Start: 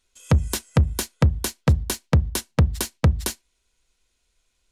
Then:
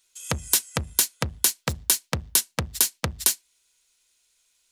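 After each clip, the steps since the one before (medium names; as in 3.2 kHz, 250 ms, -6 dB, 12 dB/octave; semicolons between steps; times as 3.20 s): tilt EQ +3.5 dB/octave; trim -2 dB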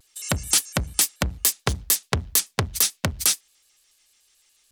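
peak limiter -8 dBFS, peak gain reduction 6.5 dB; vibrato with a chosen wave square 6.9 Hz, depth 250 cents; trim +5 dB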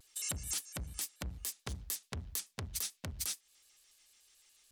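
compression 5:1, threshold -29 dBFS, peak gain reduction 13 dB; peak limiter -16 dBFS, peak gain reduction 8 dB; trim -4 dB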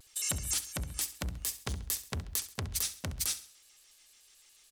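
feedback delay 67 ms, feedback 41%, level -14 dB; trim +5 dB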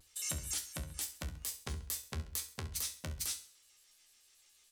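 feedback comb 77 Hz, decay 0.25 s, harmonics all, mix 80%; trim +1 dB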